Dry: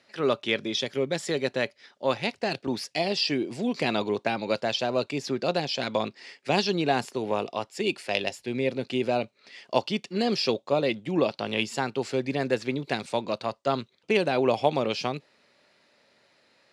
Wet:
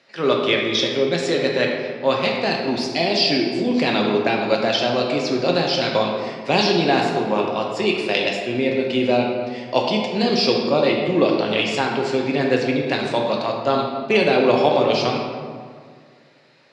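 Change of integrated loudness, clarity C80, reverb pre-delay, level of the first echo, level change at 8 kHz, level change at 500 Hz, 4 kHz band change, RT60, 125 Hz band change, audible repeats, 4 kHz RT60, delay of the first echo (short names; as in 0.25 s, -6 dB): +8.0 dB, 4.0 dB, 3 ms, none, +4.0 dB, +8.0 dB, +8.5 dB, 1.9 s, +6.5 dB, none, 1.1 s, none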